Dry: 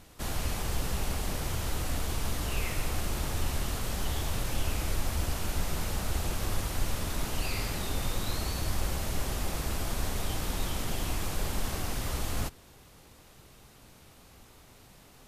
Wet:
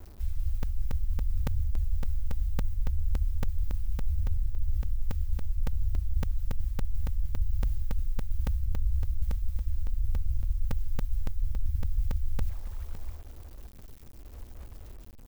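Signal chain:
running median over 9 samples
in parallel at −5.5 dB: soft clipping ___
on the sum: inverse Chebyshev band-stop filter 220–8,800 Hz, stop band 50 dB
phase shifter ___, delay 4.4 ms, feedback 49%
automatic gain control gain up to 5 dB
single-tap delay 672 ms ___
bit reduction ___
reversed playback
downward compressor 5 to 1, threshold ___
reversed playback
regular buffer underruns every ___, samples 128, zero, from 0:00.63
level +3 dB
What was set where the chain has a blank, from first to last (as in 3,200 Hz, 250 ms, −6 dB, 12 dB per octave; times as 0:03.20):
−34 dBFS, 0.68 Hz, −16 dB, 9 bits, −26 dBFS, 0.28 s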